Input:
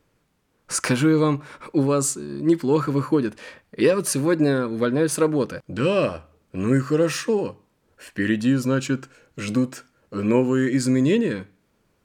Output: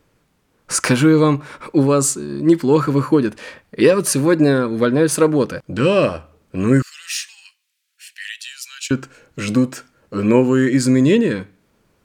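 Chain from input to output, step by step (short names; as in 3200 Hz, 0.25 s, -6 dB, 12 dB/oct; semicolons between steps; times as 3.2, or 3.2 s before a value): 6.82–8.91 inverse Chebyshev high-pass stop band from 390 Hz, stop band 80 dB; gain +5.5 dB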